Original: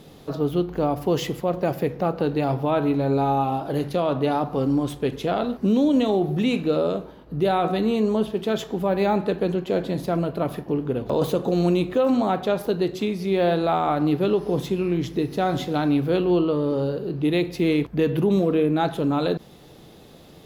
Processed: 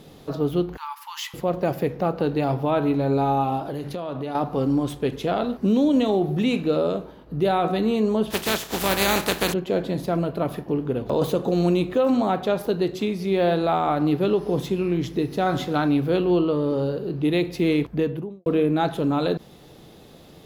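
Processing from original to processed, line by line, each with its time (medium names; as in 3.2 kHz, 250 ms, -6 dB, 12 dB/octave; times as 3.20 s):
0.77–1.34 s: brick-wall FIR high-pass 820 Hz
3.64–4.35 s: compression, threshold -26 dBFS
8.30–9.52 s: spectral contrast reduction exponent 0.4
15.46–15.87 s: peaking EQ 1.3 kHz +5.5 dB
17.85–18.46 s: studio fade out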